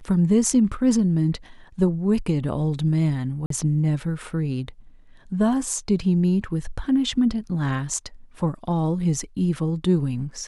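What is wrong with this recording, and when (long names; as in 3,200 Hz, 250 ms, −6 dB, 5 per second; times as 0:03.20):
0:03.46–0:03.50: drop-out 43 ms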